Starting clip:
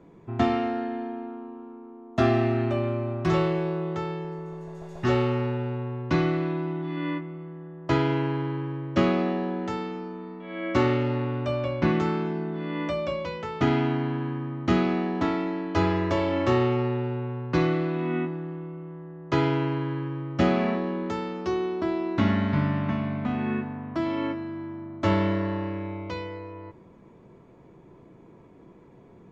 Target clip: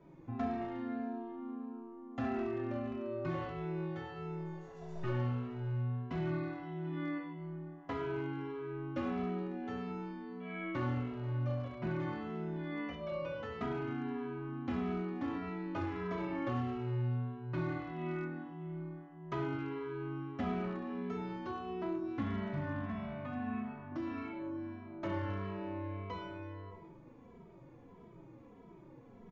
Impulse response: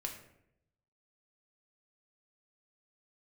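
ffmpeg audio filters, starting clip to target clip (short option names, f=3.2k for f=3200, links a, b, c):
-filter_complex "[0:a]acrossover=split=3000[a][b];[b]acompressor=threshold=-58dB:ratio=4:attack=1:release=60[c];[a][c]amix=inputs=2:normalize=0[d];[1:a]atrim=start_sample=2205,afade=t=out:st=0.18:d=0.01,atrim=end_sample=8379,asetrate=22491,aresample=44100[e];[d][e]afir=irnorm=-1:irlink=0,acompressor=threshold=-32dB:ratio=2,asettb=1/sr,asplit=3[f][g][h];[f]atrim=end=22.874[i];[g]atrim=start=22.87:end=23.92,asetpts=PTS-STARTPTS,afade=t=in:d=0.004:c=qsin,afade=t=out:st=1.046:d=0.004:c=qsin,equalizer=f=340:w=4.5:g=-14.5[j];[h]atrim=start=23.916[k];[i][j]acrossfade=d=0.004:c1=hsin:c2=qsin[l];[l][k]acrossfade=d=0.004:c1=qsin:c2=hsin,asoftclip=type=hard:threshold=-23dB,aresample=16000,aresample=44100,asplit=2[m][n];[n]adelay=2.7,afreqshift=-1.6[o];[m][o]amix=inputs=2:normalize=1,volume=-5dB"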